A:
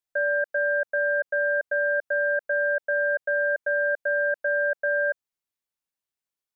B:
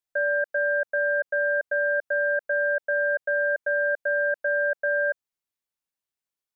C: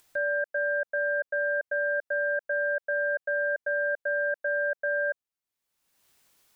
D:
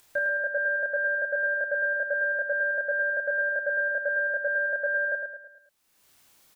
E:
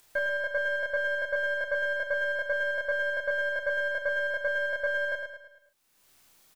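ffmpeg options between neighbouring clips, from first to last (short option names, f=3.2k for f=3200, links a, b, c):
-af anull
-af "acompressor=mode=upward:threshold=-39dB:ratio=2.5,volume=-3.5dB"
-filter_complex "[0:a]asplit=2[a][b];[b]adelay=30,volume=-2.5dB[c];[a][c]amix=inputs=2:normalize=0,asplit=2[d][e];[e]aecho=0:1:108|216|324|432|540:0.501|0.226|0.101|0.0457|0.0206[f];[d][f]amix=inputs=2:normalize=0,volume=2.5dB"
-filter_complex "[0:a]aeval=exprs='if(lt(val(0),0),0.708*val(0),val(0))':c=same,asplit=2[a][b];[b]adelay=38,volume=-10dB[c];[a][c]amix=inputs=2:normalize=0"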